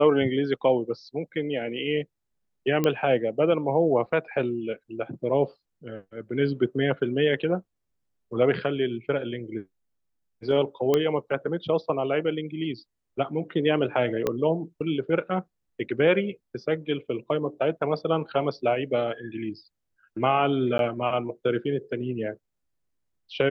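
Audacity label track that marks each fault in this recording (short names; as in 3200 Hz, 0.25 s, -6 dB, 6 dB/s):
2.840000	2.840000	pop -11 dBFS
10.940000	10.940000	pop -10 dBFS
14.270000	14.270000	pop -12 dBFS
20.780000	20.790000	gap 12 ms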